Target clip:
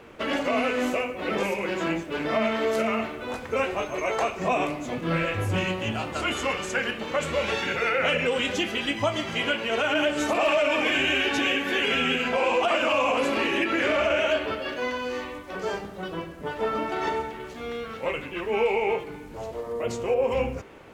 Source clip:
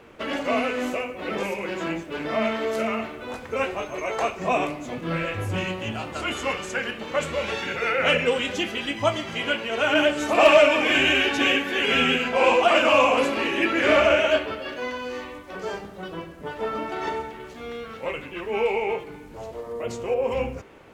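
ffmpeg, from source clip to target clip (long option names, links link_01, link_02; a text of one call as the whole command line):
ffmpeg -i in.wav -af "alimiter=limit=-16.5dB:level=0:latency=1:release=111,volume=1.5dB" out.wav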